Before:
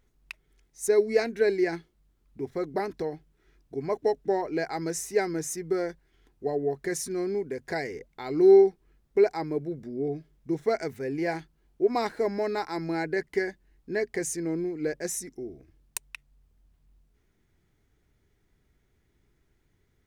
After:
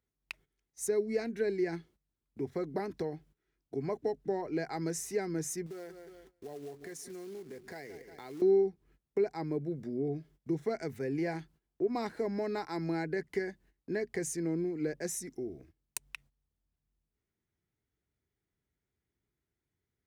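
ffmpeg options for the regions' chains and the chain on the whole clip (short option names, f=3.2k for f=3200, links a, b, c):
-filter_complex "[0:a]asettb=1/sr,asplit=3[a][b][c];[a]atrim=end=5.664[d];[b]atrim=start=5.66:end=8.42,asetpts=PTS-STARTPTS,afade=t=in:d=0.004:c=qsin,afade=t=out:st=2.756:d=0.004:c=qsin,aecho=1:1:179|358|537:0.133|0.0493|0.0183,atrim=end_sample=121716,acompressor=threshold=-47dB:ratio=3:attack=3.2:release=140:knee=1:detection=peak,acrusher=bits=4:mode=log:mix=0:aa=0.000001[e];[c]atrim=start=8.416[f];[d][e]acrossfade=d=0.004:c1=hsin:c2=qsin[g];[g][f]acrossfade=d=0.004:c1=qsin:c2=hsin,agate=range=-16dB:threshold=-55dB:ratio=16:detection=peak,acrossover=split=260[h][i];[i]acompressor=threshold=-37dB:ratio=2.5[j];[h][j]amix=inputs=2:normalize=0,highpass=61"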